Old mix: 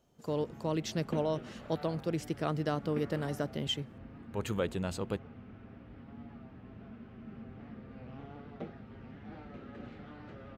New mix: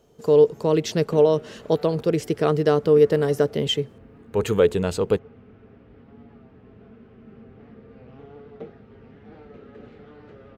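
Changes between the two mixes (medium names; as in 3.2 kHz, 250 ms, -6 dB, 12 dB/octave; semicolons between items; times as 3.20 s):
speech +9.5 dB; master: add peaking EQ 440 Hz +13 dB 0.25 oct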